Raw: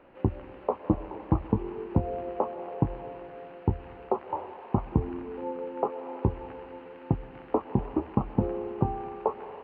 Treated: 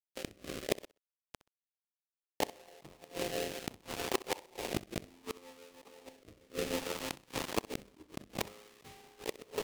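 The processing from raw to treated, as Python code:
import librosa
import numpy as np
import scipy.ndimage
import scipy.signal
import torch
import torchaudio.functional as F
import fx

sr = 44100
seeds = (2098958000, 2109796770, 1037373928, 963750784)

y = fx.halfwave_hold(x, sr)
y = fx.highpass(y, sr, hz=280.0, slope=6)
y = fx.peak_eq(y, sr, hz=1500.0, db=-9.0, octaves=0.32)
y = fx.hum_notches(y, sr, base_hz=50, count=8)
y = fx.over_compress(y, sr, threshold_db=-29.0, ratio=-0.5)
y = fx.gate_flip(y, sr, shuts_db=-27.0, range_db=-30, at=(0.84, 2.4))
y = np.sign(y) * np.maximum(np.abs(y) - 10.0 ** (-40.0 / 20.0), 0.0)
y = fx.rotary(y, sr, hz=0.65)
y = fx.gate_flip(y, sr, shuts_db=-29.0, range_db=-33)
y = fx.echo_feedback(y, sr, ms=64, feedback_pct=24, wet_db=-18)
y = F.gain(torch.from_numpy(y), 13.5).numpy()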